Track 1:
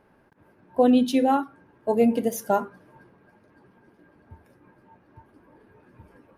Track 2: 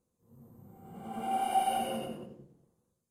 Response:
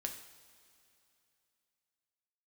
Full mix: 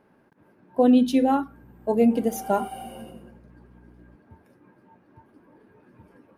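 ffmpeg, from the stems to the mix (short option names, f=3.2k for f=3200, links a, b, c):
-filter_complex "[0:a]lowshelf=f=130:g=-6.5,volume=-2dB[a];[1:a]highshelf=f=9.8k:g=5,aeval=exprs='val(0)+0.00562*(sin(2*PI*60*n/s)+sin(2*PI*2*60*n/s)/2+sin(2*PI*3*60*n/s)/3+sin(2*PI*4*60*n/s)/4+sin(2*PI*5*60*n/s)/5)':c=same,adelay=1050,volume=-8dB[b];[a][b]amix=inputs=2:normalize=0,equalizer=f=210:t=o:w=1.8:g=5.5"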